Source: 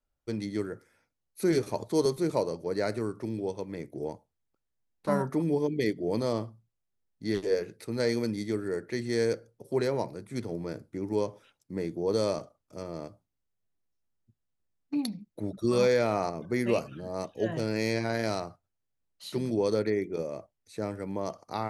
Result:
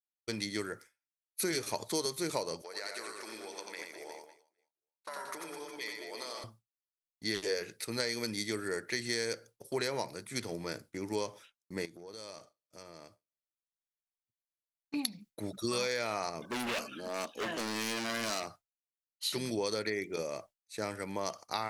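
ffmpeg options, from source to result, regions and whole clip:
ffmpeg -i in.wav -filter_complex "[0:a]asettb=1/sr,asplit=3[link_01][link_02][link_03];[link_01]atrim=end=2.624[link_04];[link_02]atrim=start=2.62:end=6.44,asetpts=PTS-STARTPTS,afade=type=in:duration=0.004:curve=qsin,afade=type=out:start_time=3.816:duration=0.004:curve=qsin,highpass=590,acompressor=threshold=-40dB:ratio=10:attack=3.2:release=140:knee=1:detection=peak,aecho=1:1:90|207|359.1|556.8|813.9:0.631|0.398|0.251|0.158|0.1,atrim=end_sample=168462[link_05];[link_03]atrim=start=6.436[link_06];[link_04][link_05]acrossfade=duration=0.004:curve1=hsin:curve2=qsin[link_07];[link_07][link_06]acrossfade=duration=0.004:curve1=qsin:curve2=hsin,asettb=1/sr,asplit=3[link_08][link_09][link_10];[link_08]atrim=end=11.854[link_11];[link_09]atrim=start=11.85:end=14.94,asetpts=PTS-STARTPTS,afade=type=in:duration=0.004:curve=qsin,afade=type=out:start_time=3.086:duration=0.004:curve=qsin,acompressor=threshold=-44dB:ratio=5:attack=3.2:release=140:knee=1:detection=peak,aecho=1:1:143|286|429|572:0.0891|0.0499|0.0279|0.0157,atrim=end_sample=136269[link_12];[link_10]atrim=start=14.936[link_13];[link_11][link_12]acrossfade=duration=0.004:curve1=hsin:curve2=qsin[link_14];[link_14][link_13]acrossfade=duration=0.004:curve1=qsin:curve2=hsin,asettb=1/sr,asplit=3[link_15][link_16][link_17];[link_15]atrim=end=16.444[link_18];[link_16]atrim=start=16.44:end=18.47,asetpts=PTS-STARTPTS,afade=type=in:duration=0.004:curve=qsin,afade=type=out:start_time=2.026:duration=0.004:curve=qsin,lowshelf=frequency=180:width_type=q:width=3:gain=-7.5,bandreject=frequency=1900:width=12,volume=30.5dB,asoftclip=hard,volume=-30.5dB[link_19];[link_17]atrim=start=18.466[link_20];[link_18][link_19]acrossfade=duration=0.004:curve1=hsin:curve2=qsin[link_21];[link_21][link_20]acrossfade=duration=0.004:curve1=qsin:curve2=hsin,agate=range=-33dB:threshold=-46dB:ratio=3:detection=peak,tiltshelf=frequency=970:gain=-9,acompressor=threshold=-31dB:ratio=10,volume=2dB" out.wav

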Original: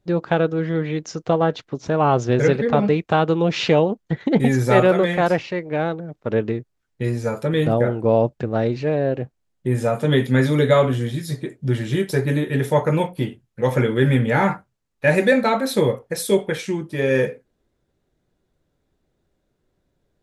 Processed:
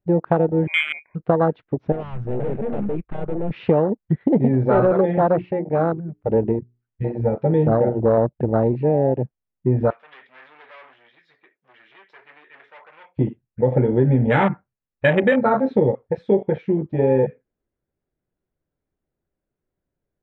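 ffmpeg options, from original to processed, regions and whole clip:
ffmpeg -i in.wav -filter_complex "[0:a]asettb=1/sr,asplit=3[link_01][link_02][link_03];[link_01]atrim=end=0.674[link_04];[link_02]atrim=start=0.67:end=1.15,asetpts=PTS-STARTPTS,afade=type=in:duration=0.004:curve=qsin,afade=type=out:start_time=0.476:duration=0.004:curve=qsin,lowpass=frequency=2200:width_type=q:width=0.5098,lowpass=frequency=2200:width_type=q:width=0.6013,lowpass=frequency=2200:width_type=q:width=0.9,lowpass=frequency=2200:width_type=q:width=2.563,afreqshift=-2600,asuperstop=centerf=1300:order=12:qfactor=4.4[link_05];[link_03]atrim=start=1.146[link_06];[link_04][link_05]acrossfade=duration=0.004:curve1=hsin:curve2=qsin[link_07];[link_07][link_06]acrossfade=duration=0.004:curve1=qsin:curve2=hsin,asettb=1/sr,asplit=3[link_08][link_09][link_10];[link_08]atrim=end=1.924[link_11];[link_09]atrim=start=1.92:end=3.51,asetpts=PTS-STARTPTS,afade=type=in:duration=0.004:curve=qsin,afade=type=out:start_time=1.586:duration=0.004:curve=qsin,equalizer=frequency=1200:width=1.8:gain=8,aeval=exprs='(tanh(20*val(0)+0.7)-tanh(0.7))/20':channel_layout=same[link_12];[link_10]atrim=start=3.506[link_13];[link_11][link_12]acrossfade=duration=0.004:curve1=hsin:curve2=qsin[link_14];[link_14][link_13]acrossfade=duration=0.004:curve1=qsin:curve2=hsin,asettb=1/sr,asplit=3[link_15][link_16][link_17];[link_15]atrim=end=4.494[link_18];[link_16]atrim=start=4.49:end=8.18,asetpts=PTS-STARTPTS,afade=type=in:duration=0.004:curve=qsin,afade=type=out:start_time=3.686:duration=0.004:curve=qsin,bandreject=frequency=60:width_type=h:width=6,bandreject=frequency=120:width_type=h:width=6,bandreject=frequency=180:width_type=h:width=6,bandreject=frequency=240:width_type=h:width=6,bandreject=frequency=300:width_type=h:width=6,bandreject=frequency=360:width_type=h:width=6,bandreject=frequency=420:width_type=h:width=6,volume=12dB,asoftclip=hard,volume=-12dB[link_19];[link_17]atrim=start=8.176[link_20];[link_18][link_19]acrossfade=duration=0.004:curve1=hsin:curve2=qsin[link_21];[link_21][link_20]acrossfade=duration=0.004:curve1=qsin:curve2=hsin,asettb=1/sr,asplit=3[link_22][link_23][link_24];[link_22]atrim=end=9.904[link_25];[link_23]atrim=start=9.9:end=13.19,asetpts=PTS-STARTPTS,afade=type=in:duration=0.004:curve=qsin,afade=type=out:start_time=3.286:duration=0.004:curve=qsin,asoftclip=type=hard:threshold=-22dB,highpass=1100[link_26];[link_24]atrim=start=13.186[link_27];[link_25][link_26]acrossfade=duration=0.004:curve1=hsin:curve2=qsin[link_28];[link_28][link_27]acrossfade=duration=0.004:curve1=qsin:curve2=hsin,lowpass=frequency=2700:width=0.5412,lowpass=frequency=2700:width=1.3066,afwtdn=0.1,acompressor=threshold=-17dB:ratio=6,volume=4.5dB" out.wav

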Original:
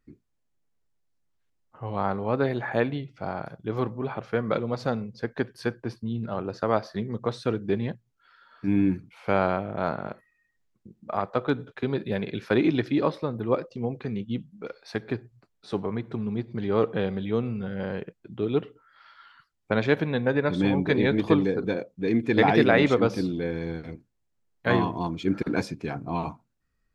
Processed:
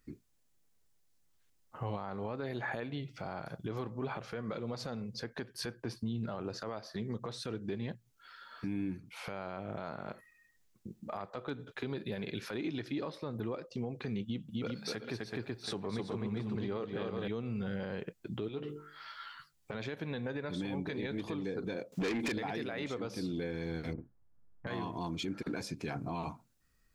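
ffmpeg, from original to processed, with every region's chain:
ffmpeg -i in.wav -filter_complex "[0:a]asettb=1/sr,asplit=3[link_01][link_02][link_03];[link_01]atrim=end=14.234[link_04];[link_02]atrim=start=14.23:end=17.28,asetpts=PTS-STARTPTS,afade=type=in:duration=0.004:curve=qsin,afade=type=out:start_time=3.046:duration=0.004:curve=qsin,highpass=47,aecho=1:1:255|378|728:0.668|0.398|0.126,atrim=end_sample=134505[link_05];[link_03]atrim=start=17.276[link_06];[link_04][link_05]acrossfade=duration=0.004:curve1=hsin:curve2=qsin[link_07];[link_07][link_06]acrossfade=duration=0.004:curve1=qsin:curve2=hsin,asettb=1/sr,asplit=3[link_08][link_09][link_10];[link_08]atrim=end=18.484[link_11];[link_09]atrim=start=18.48:end=19.74,asetpts=PTS-STARTPTS,afade=type=in:duration=0.004:curve=qsin,afade=type=out:start_time=1.256:duration=0.004:curve=qsin,bandreject=frequency=49.6:width_type=h:width=4,bandreject=frequency=99.2:width_type=h:width=4,bandreject=frequency=148.8:width_type=h:width=4,bandreject=frequency=198.4:width_type=h:width=4,bandreject=frequency=248:width_type=h:width=4,bandreject=frequency=297.6:width_type=h:width=4,bandreject=frequency=347.2:width_type=h:width=4,bandreject=frequency=396.8:width_type=h:width=4,bandreject=frequency=446.4:width_type=h:width=4,acompressor=threshold=-36dB:ratio=3:attack=3.2:release=140:knee=1:detection=peak,asplit=2[link_12][link_13];[link_13]adelay=14,volume=-7.5dB[link_14];[link_12][link_14]amix=inputs=2:normalize=0,atrim=end_sample=55566[link_15];[link_10]atrim=start=19.736[link_16];[link_11][link_15]acrossfade=duration=0.004:curve1=hsin:curve2=qsin[link_17];[link_17][link_16]acrossfade=duration=0.004:curve1=qsin:curve2=hsin,asettb=1/sr,asplit=3[link_18][link_19][link_20];[link_18]atrim=end=21.924[link_21];[link_19]atrim=start=21.92:end=22.32,asetpts=PTS-STARTPTS,afade=type=in:duration=0.004:curve=qsin,afade=type=out:start_time=0.396:duration=0.004:curve=qsin,highpass=62,acompressor=threshold=-33dB:ratio=16:attack=3.2:release=140:knee=1:detection=peak,asplit=2[link_22][link_23];[link_23]highpass=frequency=720:poles=1,volume=30dB,asoftclip=type=tanh:threshold=-18dB[link_24];[link_22][link_24]amix=inputs=2:normalize=0,lowpass=frequency=5300:poles=1,volume=-6dB[link_25];[link_20]atrim=start=22.316[link_26];[link_21][link_25]acrossfade=duration=0.004:curve1=hsin:curve2=qsin[link_27];[link_27][link_26]acrossfade=duration=0.004:curve1=qsin:curve2=hsin,asettb=1/sr,asplit=3[link_28][link_29][link_30];[link_28]atrim=end=23.934[link_31];[link_29]atrim=start=23.93:end=24.67,asetpts=PTS-STARTPTS,afade=type=in:duration=0.004:curve=qsin,afade=type=out:start_time=0.736:duration=0.004:curve=qsin,lowpass=frequency=1500:width=0.5412,lowpass=frequency=1500:width=1.3066,asubboost=boost=9:cutoff=240,asplit=2[link_32][link_33];[link_33]adelay=48,volume=-5.5dB[link_34];[link_32][link_34]amix=inputs=2:normalize=0,atrim=end_sample=32634[link_35];[link_30]atrim=start=24.666[link_36];[link_31][link_35]acrossfade=duration=0.004:curve1=hsin:curve2=qsin[link_37];[link_37][link_36]acrossfade=duration=0.004:curve1=qsin:curve2=hsin,highshelf=frequency=3700:gain=10,acompressor=threshold=-34dB:ratio=10,alimiter=level_in=6dB:limit=-24dB:level=0:latency=1:release=13,volume=-6dB,volume=2dB" out.wav

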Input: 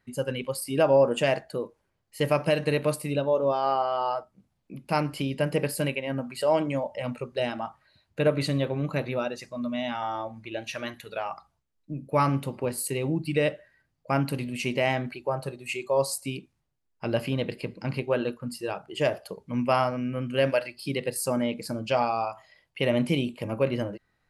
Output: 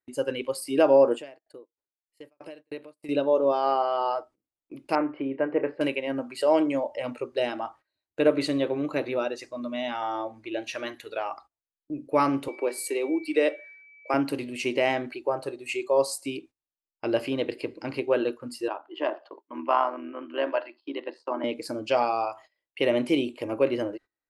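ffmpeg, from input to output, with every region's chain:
ffmpeg -i in.wav -filter_complex "[0:a]asettb=1/sr,asplit=3[link_01][link_02][link_03];[link_01]atrim=end=1.154[link_04];[link_02]atrim=start=1.15:end=3.09,asetpts=PTS-STARTPTS,afade=type=in:duration=0.004:curve=qsin,afade=type=out:start_time=1.936:duration=0.004:curve=qsin,bandreject=frequency=6200:width=7.7,acompressor=threshold=-39dB:ratio=2:attack=3.2:release=140:knee=1:detection=peak,aeval=exprs='val(0)*pow(10,-26*if(lt(mod(3.2*n/s,1),2*abs(3.2)/1000),1-mod(3.2*n/s,1)/(2*abs(3.2)/1000),(mod(3.2*n/s,1)-2*abs(3.2)/1000)/(1-2*abs(3.2)/1000))/20)':channel_layout=same[link_05];[link_03]atrim=start=3.086[link_06];[link_04][link_05]acrossfade=duration=0.004:curve1=hsin:curve2=qsin[link_07];[link_07][link_06]acrossfade=duration=0.004:curve1=qsin:curve2=hsin,asettb=1/sr,asplit=3[link_08][link_09][link_10];[link_08]atrim=end=4.954[link_11];[link_09]atrim=start=4.95:end=5.81,asetpts=PTS-STARTPTS,afade=type=in:duration=0.004:curve=qsin,afade=type=out:start_time=0.856:duration=0.004:curve=qsin,lowpass=frequency=1900:width=0.5412,lowpass=frequency=1900:width=1.3066,lowshelf=frequency=190:gain=-8.5,asplit=2[link_12][link_13];[link_13]adelay=30,volume=-11.5dB[link_14];[link_12][link_14]amix=inputs=2:normalize=0,atrim=end_sample=37926[link_15];[link_10]atrim=start=5.806[link_16];[link_11][link_15]acrossfade=duration=0.004:curve1=hsin:curve2=qsin[link_17];[link_17][link_16]acrossfade=duration=0.004:curve1=qsin:curve2=hsin,asettb=1/sr,asplit=3[link_18][link_19][link_20];[link_18]atrim=end=12.484[link_21];[link_19]atrim=start=12.48:end=14.14,asetpts=PTS-STARTPTS,afade=type=in:duration=0.004:curve=qsin,afade=type=out:start_time=1.656:duration=0.004:curve=qsin,highpass=frequency=310:width=0.5412,highpass=frequency=310:width=1.3066,bandreject=frequency=2900:width=22,aeval=exprs='val(0)+0.00562*sin(2*PI*2300*n/s)':channel_layout=same[link_22];[link_20]atrim=start=14.136[link_23];[link_21][link_22]acrossfade=duration=0.004:curve1=hsin:curve2=qsin[link_24];[link_24][link_23]acrossfade=duration=0.004:curve1=qsin:curve2=hsin,asettb=1/sr,asplit=3[link_25][link_26][link_27];[link_25]atrim=end=18.684[link_28];[link_26]atrim=start=18.68:end=21.44,asetpts=PTS-STARTPTS,afade=type=in:duration=0.004:curve=qsin,afade=type=out:start_time=2.756:duration=0.004:curve=qsin,tremolo=f=79:d=0.571,highpass=frequency=270:width=0.5412,highpass=frequency=270:width=1.3066,equalizer=frequency=460:width_type=q:width=4:gain=-10,equalizer=frequency=1000:width_type=q:width=4:gain=10,equalizer=frequency=2300:width_type=q:width=4:gain=-8,lowpass=frequency=3400:width=0.5412,lowpass=frequency=3400:width=1.3066[link_29];[link_27]atrim=start=21.436[link_30];[link_28][link_29]acrossfade=duration=0.004:curve1=hsin:curve2=qsin[link_31];[link_31][link_30]acrossfade=duration=0.004:curve1=qsin:curve2=hsin,agate=range=-21dB:threshold=-48dB:ratio=16:detection=peak,lowpass=10000,lowshelf=frequency=240:width_type=q:width=3:gain=-8" out.wav

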